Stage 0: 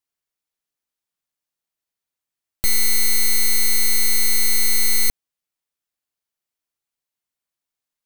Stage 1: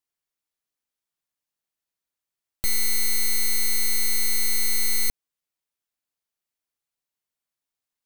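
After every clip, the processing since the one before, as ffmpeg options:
-af "alimiter=limit=0.141:level=0:latency=1:release=110,volume=0.794"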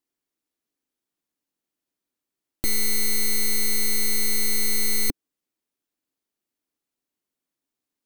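-af "equalizer=f=290:t=o:w=1.2:g=14.5"

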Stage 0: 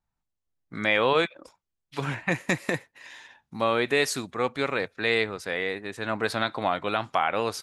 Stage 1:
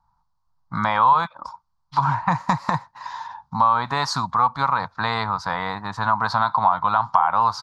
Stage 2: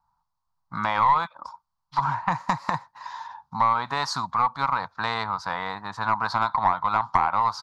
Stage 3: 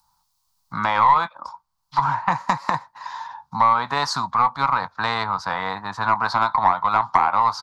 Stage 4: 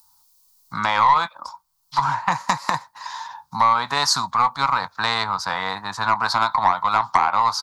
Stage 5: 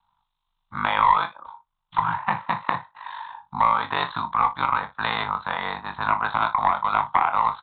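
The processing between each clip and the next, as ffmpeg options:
-filter_complex "[0:a]firequalizer=gain_entry='entry(160,0);entry(380,-24);entry(940,15);entry(1800,-11);entry(2600,-19);entry(4500,-2);entry(9300,-24)':delay=0.05:min_phase=1,asplit=2[s0][s1];[s1]alimiter=limit=0.178:level=0:latency=1,volume=1.12[s2];[s0][s2]amix=inputs=2:normalize=0,acompressor=threshold=0.0447:ratio=2,volume=2.11"
-af "lowshelf=f=220:g=-7,aeval=exprs='0.708*(cos(1*acos(clip(val(0)/0.708,-1,1)))-cos(1*PI/2))+0.178*(cos(2*acos(clip(val(0)/0.708,-1,1)))-cos(2*PI/2))+0.01*(cos(8*acos(clip(val(0)/0.708,-1,1)))-cos(8*PI/2))':c=same,volume=0.668"
-filter_complex "[0:a]acrossover=split=210|3500[s0][s1][s2];[s0]alimiter=level_in=2.82:limit=0.0631:level=0:latency=1:release=485,volume=0.355[s3];[s1]asplit=2[s4][s5];[s5]adelay=21,volume=0.224[s6];[s4][s6]amix=inputs=2:normalize=0[s7];[s2]acompressor=mode=upward:threshold=0.001:ratio=2.5[s8];[s3][s7][s8]amix=inputs=3:normalize=0,volume=1.58"
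-af "crystalizer=i=3.5:c=0,volume=0.841"
-af "aresample=8000,aresample=44100,aeval=exprs='val(0)*sin(2*PI*25*n/s)':c=same,aecho=1:1:29|59:0.299|0.15"

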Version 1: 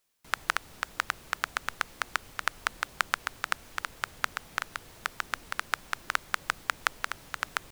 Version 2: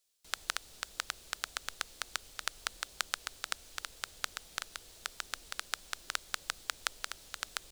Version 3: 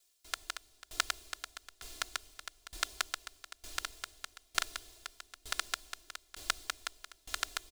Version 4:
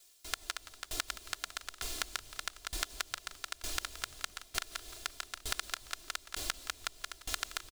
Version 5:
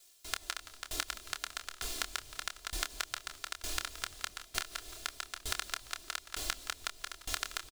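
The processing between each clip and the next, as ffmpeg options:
-af "equalizer=f=125:t=o:w=1:g=-10,equalizer=f=250:t=o:w=1:g=-6,equalizer=f=1000:t=o:w=1:g=-7,equalizer=f=2000:t=o:w=1:g=-5,equalizer=f=4000:t=o:w=1:g=5,equalizer=f=8000:t=o:w=1:g=5,volume=0.631"
-af "aecho=1:1:2.9:0.9,aeval=exprs='val(0)*pow(10,-24*if(lt(mod(1.1*n/s,1),2*abs(1.1)/1000),1-mod(1.1*n/s,1)/(2*abs(1.1)/1000),(mod(1.1*n/s,1)-2*abs(1.1)/1000)/(1-2*abs(1.1)/1000))/20)':c=same,volume=1.88"
-filter_complex "[0:a]acompressor=threshold=0.00891:ratio=10,asplit=4[s0][s1][s2][s3];[s1]adelay=172,afreqshift=-65,volume=0.178[s4];[s2]adelay=344,afreqshift=-130,volume=0.0589[s5];[s3]adelay=516,afreqshift=-195,volume=0.0193[s6];[s0][s4][s5][s6]amix=inputs=4:normalize=0,volume=2.99"
-filter_complex "[0:a]asplit=2[s0][s1];[s1]adelay=27,volume=0.376[s2];[s0][s2]amix=inputs=2:normalize=0"

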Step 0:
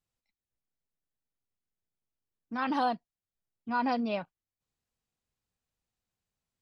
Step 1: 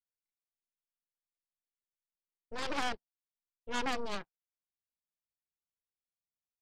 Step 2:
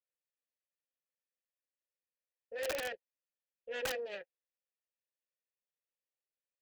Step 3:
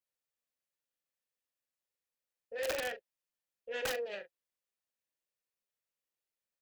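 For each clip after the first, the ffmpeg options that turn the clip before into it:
-af "aeval=exprs='0.126*(cos(1*acos(clip(val(0)/0.126,-1,1)))-cos(1*PI/2))+0.0501*(cos(3*acos(clip(val(0)/0.126,-1,1)))-cos(3*PI/2))+0.00708*(cos(5*acos(clip(val(0)/0.126,-1,1)))-cos(5*PI/2))+0.0158*(cos(8*acos(clip(val(0)/0.126,-1,1)))-cos(8*PI/2))':c=same"
-filter_complex "[0:a]asplit=3[s0][s1][s2];[s0]bandpass=f=530:t=q:w=8,volume=1[s3];[s1]bandpass=f=1840:t=q:w=8,volume=0.501[s4];[s2]bandpass=f=2480:t=q:w=8,volume=0.355[s5];[s3][s4][s5]amix=inputs=3:normalize=0,aeval=exprs='(mod(84.1*val(0)+1,2)-1)/84.1':c=same,equalizer=f=240:t=o:w=0.77:g=-5.5,volume=2.82"
-filter_complex "[0:a]asplit=2[s0][s1];[s1]adelay=40,volume=0.316[s2];[s0][s2]amix=inputs=2:normalize=0,volume=1.12"

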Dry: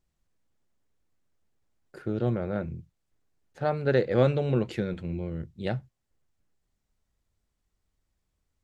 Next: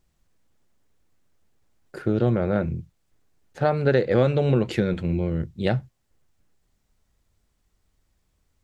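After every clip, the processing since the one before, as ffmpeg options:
-af "acompressor=threshold=0.0562:ratio=3,volume=2.66"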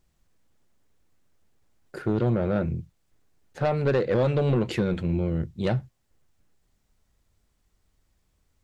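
-af "asoftclip=type=tanh:threshold=0.158"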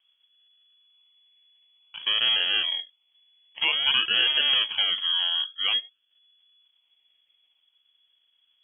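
-af "acrusher=samples=29:mix=1:aa=0.000001:lfo=1:lforange=17.4:lforate=0.52,lowpass=f=2900:t=q:w=0.5098,lowpass=f=2900:t=q:w=0.6013,lowpass=f=2900:t=q:w=0.9,lowpass=f=2900:t=q:w=2.563,afreqshift=-3400"

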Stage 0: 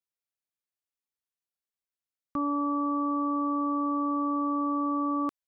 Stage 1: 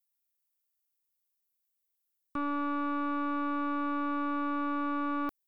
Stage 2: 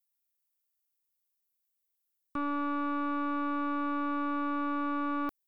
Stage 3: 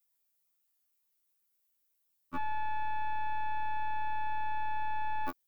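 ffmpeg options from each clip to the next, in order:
-af "aemphasis=mode=production:type=50fm,aeval=exprs='(tanh(20*val(0)+0.65)-tanh(0.65))/20':c=same"
-af anull
-af "afftfilt=real='re*2*eq(mod(b,4),0)':imag='im*2*eq(mod(b,4),0)':win_size=2048:overlap=0.75,volume=2.11"

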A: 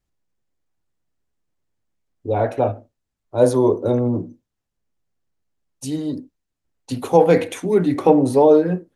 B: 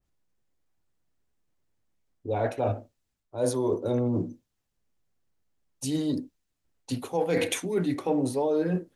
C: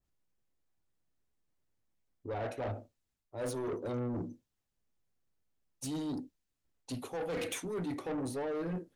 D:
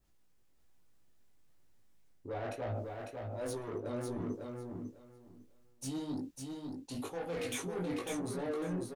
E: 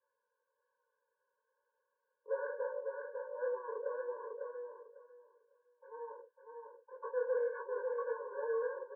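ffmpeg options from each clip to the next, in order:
-af "areverse,acompressor=threshold=0.0631:ratio=6,areverse,adynamicequalizer=threshold=0.00631:dfrequency=2000:dqfactor=0.7:tfrequency=2000:tqfactor=0.7:attack=5:release=100:ratio=0.375:range=3:mode=boostabove:tftype=highshelf"
-af "asoftclip=type=tanh:threshold=0.0422,volume=0.562"
-af "areverse,acompressor=threshold=0.00501:ratio=12,areverse,flanger=delay=17.5:depth=4.8:speed=1.1,aecho=1:1:550|1100|1650:0.596|0.113|0.0215,volume=3.98"
-af "asuperpass=centerf=870:order=20:qfactor=0.72,afftfilt=real='re*eq(mod(floor(b*sr/1024/290),2),1)':imag='im*eq(mod(floor(b*sr/1024/290),2),1)':win_size=1024:overlap=0.75,volume=2.11"

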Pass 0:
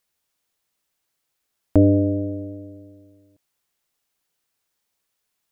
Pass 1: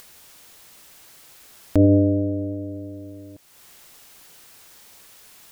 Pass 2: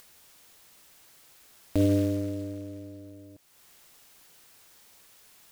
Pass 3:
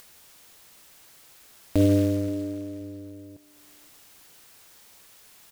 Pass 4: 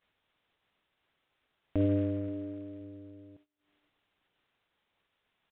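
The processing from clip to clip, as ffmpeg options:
-filter_complex "[0:a]asplit=2[s0][s1];[s1]acompressor=mode=upward:threshold=0.126:ratio=2.5,volume=0.794[s2];[s0][s2]amix=inputs=2:normalize=0,alimiter=level_in=1.33:limit=0.891:release=50:level=0:latency=1,volume=0.531"
-af "acrusher=bits=5:mode=log:mix=0:aa=0.000001,volume=0.398"
-filter_complex "[0:a]asplit=2[s0][s1];[s1]adelay=527,lowpass=f=2000:p=1,volume=0.0841,asplit=2[s2][s3];[s3]adelay=527,lowpass=f=2000:p=1,volume=0.28[s4];[s0][s2][s4]amix=inputs=3:normalize=0,volume=1.5"
-filter_complex "[0:a]agate=range=0.0708:threshold=0.00282:ratio=16:detection=peak,acrossover=split=2900[s0][s1];[s1]acompressor=threshold=0.00141:ratio=4:attack=1:release=60[s2];[s0][s2]amix=inputs=2:normalize=0,aresample=8000,aresample=44100,volume=0.398"

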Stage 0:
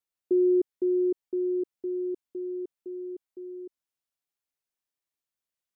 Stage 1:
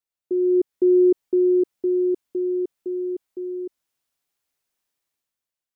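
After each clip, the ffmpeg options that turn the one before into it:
-af "dynaudnorm=f=100:g=13:m=3.76,volume=0.841"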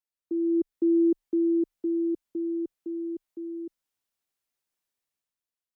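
-af "afreqshift=-27,volume=0.501"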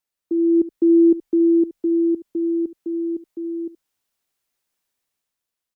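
-af "aecho=1:1:72:0.158,volume=2.37"

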